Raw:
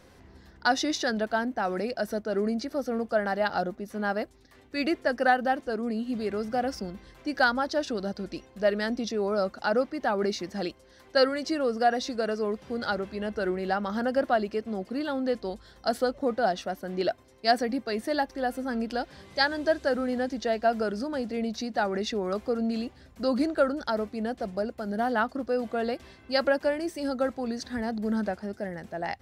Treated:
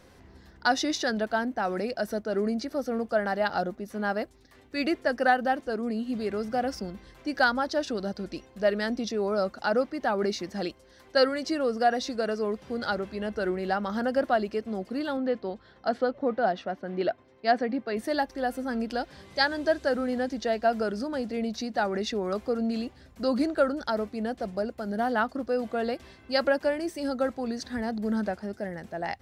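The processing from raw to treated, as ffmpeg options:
ffmpeg -i in.wav -filter_complex "[0:a]asettb=1/sr,asplit=3[link_01][link_02][link_03];[link_01]atrim=end=15.174[link_04];[link_02]atrim=start=15.17:end=17.97,asetpts=PTS-STARTPTS,afade=type=in:duration=0.004:curve=qsin,afade=type=out:start_time=2.796:duration=0.004:curve=qsin,highpass=100,lowpass=3000[link_05];[link_03]atrim=start=17.966[link_06];[link_04][link_05]acrossfade=duration=0.004:curve1=hsin:curve2=qsin[link_07];[link_07][link_06]acrossfade=duration=0.004:curve1=qsin:curve2=hsin" out.wav

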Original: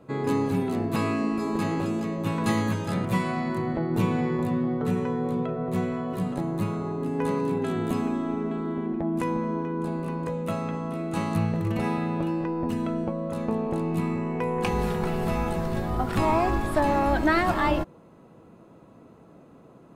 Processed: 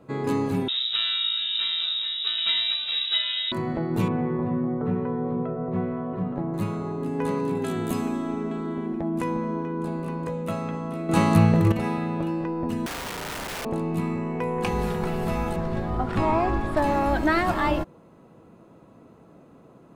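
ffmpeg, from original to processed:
ffmpeg -i in.wav -filter_complex "[0:a]asettb=1/sr,asplit=3[link_01][link_02][link_03];[link_01]atrim=end=0.684[link_04];[link_02]atrim=start=0.68:end=3.52,asetpts=PTS-STARTPTS,afade=type=in:duration=0.004:curve=qsin,afade=type=out:start_time=2.836:duration=0.004:curve=qsin,lowpass=frequency=3400:width_type=q:width=0.5098,lowpass=frequency=3400:width_type=q:width=0.6013,lowpass=frequency=3400:width_type=q:width=0.9,lowpass=frequency=3400:width_type=q:width=2.563,afreqshift=-4000[link_05];[link_03]atrim=start=3.516[link_06];[link_04][link_05]acrossfade=duration=0.004:curve1=hsin:curve2=qsin[link_07];[link_07][link_06]acrossfade=duration=0.004:curve1=qsin:curve2=hsin,asettb=1/sr,asplit=3[link_08][link_09][link_10];[link_08]atrim=end=4.084[link_11];[link_09]atrim=start=4.08:end=6.54,asetpts=PTS-STARTPTS,afade=type=in:duration=0.004:curve=qsin,afade=type=out:start_time=2.456:duration=0.004:curve=qsin,lowpass=1500[link_12];[link_10]atrim=start=6.536[link_13];[link_11][link_12]acrossfade=duration=0.004:curve1=hsin:curve2=qsin[link_14];[link_14][link_13]acrossfade=duration=0.004:curve1=qsin:curve2=hsin,asettb=1/sr,asplit=3[link_15][link_16][link_17];[link_15]atrim=end=7.554[link_18];[link_16]atrim=start=7.55:end=9.09,asetpts=PTS-STARTPTS,afade=type=in:duration=0.004:curve=qsin,afade=type=out:start_time=1.536:duration=0.004:curve=qsin,aemphasis=mode=production:type=cd[link_19];[link_17]atrim=start=9.086[link_20];[link_18][link_19]acrossfade=duration=0.004:curve1=hsin:curve2=qsin[link_21];[link_21][link_20]acrossfade=duration=0.004:curve1=qsin:curve2=hsin,asettb=1/sr,asplit=3[link_22][link_23][link_24];[link_22]atrim=end=12.864[link_25];[link_23]atrim=start=12.86:end=13.65,asetpts=PTS-STARTPTS,afade=type=in:duration=0.004:curve=qsin,afade=type=out:start_time=0.786:duration=0.004:curve=qsin,aeval=exprs='(mod(25.1*val(0)+1,2)-1)/25.1':channel_layout=same[link_26];[link_24]atrim=start=13.646[link_27];[link_25][link_26]acrossfade=duration=0.004:curve1=hsin:curve2=qsin[link_28];[link_28][link_27]acrossfade=duration=0.004:curve1=qsin:curve2=hsin,asettb=1/sr,asplit=3[link_29][link_30][link_31];[link_29]atrim=end=15.564[link_32];[link_30]atrim=start=15.56:end=16.77,asetpts=PTS-STARTPTS,afade=type=in:duration=0.004:curve=qsin,afade=type=out:start_time=1.206:duration=0.004:curve=qsin,aemphasis=mode=reproduction:type=50fm[link_33];[link_31]atrim=start=16.766[link_34];[link_32][link_33]acrossfade=duration=0.004:curve1=hsin:curve2=qsin[link_35];[link_35][link_34]acrossfade=duration=0.004:curve1=qsin:curve2=hsin,asplit=3[link_36][link_37][link_38];[link_36]atrim=end=11.092[link_39];[link_37]atrim=start=11.088:end=11.722,asetpts=PTS-STARTPTS,volume=8dB[link_40];[link_38]atrim=start=11.718[link_41];[link_39][link_40]acrossfade=duration=0.004:curve1=hsin:curve2=hsin[link_42];[link_42][link_41]acrossfade=duration=0.004:curve1=hsin:curve2=hsin" out.wav

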